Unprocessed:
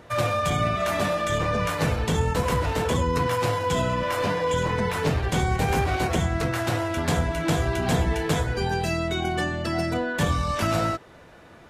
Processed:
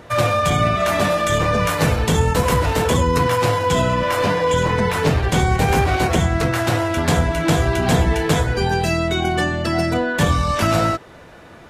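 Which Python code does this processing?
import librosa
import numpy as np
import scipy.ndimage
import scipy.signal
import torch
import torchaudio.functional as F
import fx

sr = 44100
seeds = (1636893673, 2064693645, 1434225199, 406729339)

y = fx.high_shelf(x, sr, hz=8600.0, db=5.5, at=(1.1, 3.28))
y = y * librosa.db_to_amplitude(6.5)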